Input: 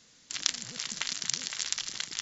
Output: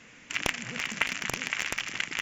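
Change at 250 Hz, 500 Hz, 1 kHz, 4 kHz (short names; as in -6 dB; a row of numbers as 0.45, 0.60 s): +9.5, +13.0, +9.5, -2.0 dB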